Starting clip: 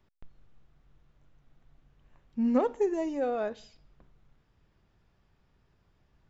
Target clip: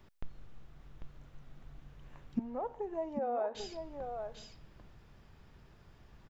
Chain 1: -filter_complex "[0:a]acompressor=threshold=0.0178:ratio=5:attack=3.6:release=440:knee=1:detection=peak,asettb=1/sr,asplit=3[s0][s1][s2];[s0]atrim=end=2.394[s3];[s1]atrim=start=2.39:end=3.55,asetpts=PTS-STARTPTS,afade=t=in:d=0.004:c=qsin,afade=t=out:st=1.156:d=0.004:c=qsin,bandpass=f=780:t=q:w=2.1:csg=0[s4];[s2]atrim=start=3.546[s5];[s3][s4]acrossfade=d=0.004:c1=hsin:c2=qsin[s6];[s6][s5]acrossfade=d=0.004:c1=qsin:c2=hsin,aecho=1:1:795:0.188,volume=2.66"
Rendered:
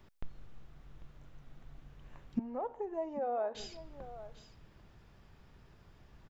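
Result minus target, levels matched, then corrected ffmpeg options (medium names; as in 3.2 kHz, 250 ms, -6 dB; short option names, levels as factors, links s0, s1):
echo-to-direct -8 dB
-filter_complex "[0:a]acompressor=threshold=0.0178:ratio=5:attack=3.6:release=440:knee=1:detection=peak,asettb=1/sr,asplit=3[s0][s1][s2];[s0]atrim=end=2.394[s3];[s1]atrim=start=2.39:end=3.55,asetpts=PTS-STARTPTS,afade=t=in:d=0.004:c=qsin,afade=t=out:st=1.156:d=0.004:c=qsin,bandpass=f=780:t=q:w=2.1:csg=0[s4];[s2]atrim=start=3.546[s5];[s3][s4]acrossfade=d=0.004:c1=hsin:c2=qsin[s6];[s6][s5]acrossfade=d=0.004:c1=qsin:c2=hsin,aecho=1:1:795:0.473,volume=2.66"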